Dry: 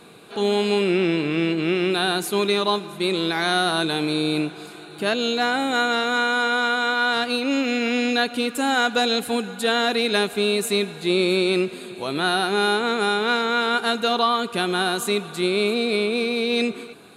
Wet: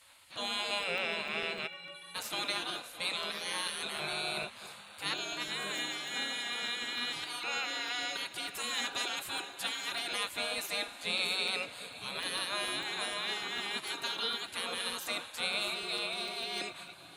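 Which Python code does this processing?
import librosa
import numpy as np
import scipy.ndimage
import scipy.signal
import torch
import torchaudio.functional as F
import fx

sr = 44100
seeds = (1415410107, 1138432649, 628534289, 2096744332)

y = x + 10.0 ** (-17.5 / 20.0) * np.pad(x, (int(618 * sr / 1000.0), 0))[:len(x)]
y = fx.spec_gate(y, sr, threshold_db=-15, keep='weak')
y = fx.stiff_resonator(y, sr, f0_hz=170.0, decay_s=0.5, stiffness=0.03, at=(1.66, 2.14), fade=0.02)
y = fx.buffer_crackle(y, sr, first_s=0.83, period_s=0.15, block=64, kind='zero')
y = F.gain(torch.from_numpy(y), -4.5).numpy()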